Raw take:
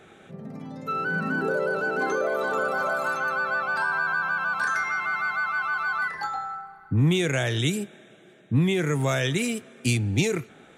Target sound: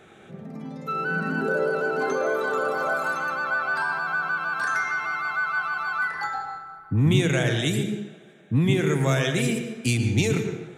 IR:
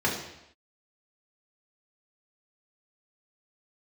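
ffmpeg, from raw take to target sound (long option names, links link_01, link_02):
-filter_complex "[0:a]asplit=2[link_01][link_02];[1:a]atrim=start_sample=2205,adelay=114[link_03];[link_02][link_03]afir=irnorm=-1:irlink=0,volume=-18dB[link_04];[link_01][link_04]amix=inputs=2:normalize=0"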